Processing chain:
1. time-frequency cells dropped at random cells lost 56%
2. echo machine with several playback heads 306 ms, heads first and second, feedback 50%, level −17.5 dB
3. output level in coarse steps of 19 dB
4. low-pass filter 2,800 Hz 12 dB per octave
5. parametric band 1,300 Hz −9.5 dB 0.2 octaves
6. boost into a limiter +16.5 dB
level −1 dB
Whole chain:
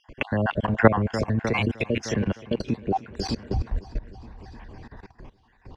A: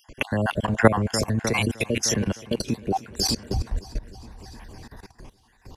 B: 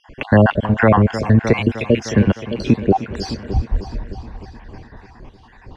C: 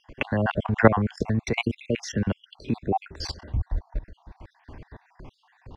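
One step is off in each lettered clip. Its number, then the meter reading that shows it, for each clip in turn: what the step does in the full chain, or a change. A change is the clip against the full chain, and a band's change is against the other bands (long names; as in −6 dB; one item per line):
4, 4 kHz band +8.5 dB
3, change in crest factor −8.5 dB
2, change in momentary loudness spread −10 LU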